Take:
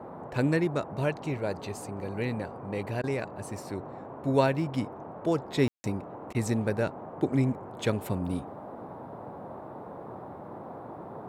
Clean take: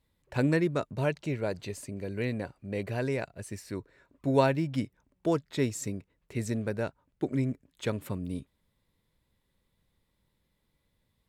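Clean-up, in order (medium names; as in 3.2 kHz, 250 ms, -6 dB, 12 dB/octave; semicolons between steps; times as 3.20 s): room tone fill 5.68–5.84 s; interpolate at 3.02/6.33 s, 15 ms; noise print and reduce 30 dB; trim 0 dB, from 5.41 s -3.5 dB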